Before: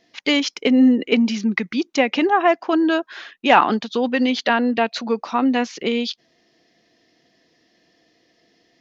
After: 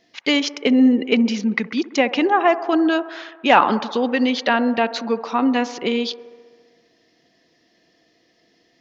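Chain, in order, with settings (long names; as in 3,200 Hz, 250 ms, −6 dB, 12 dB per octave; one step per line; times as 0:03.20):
delay with a band-pass on its return 66 ms, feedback 75%, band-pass 680 Hz, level −14 dB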